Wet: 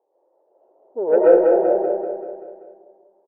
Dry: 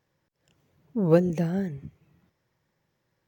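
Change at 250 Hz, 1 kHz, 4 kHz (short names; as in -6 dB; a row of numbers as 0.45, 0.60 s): +1.0 dB, +14.0 dB, n/a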